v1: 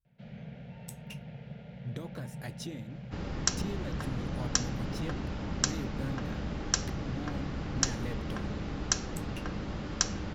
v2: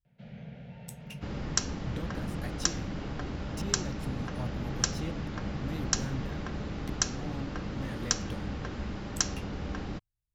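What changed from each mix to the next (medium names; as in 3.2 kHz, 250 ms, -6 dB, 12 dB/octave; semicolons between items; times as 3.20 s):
second sound: entry -1.90 s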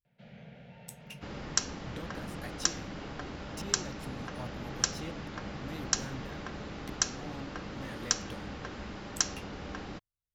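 master: add bass shelf 250 Hz -9.5 dB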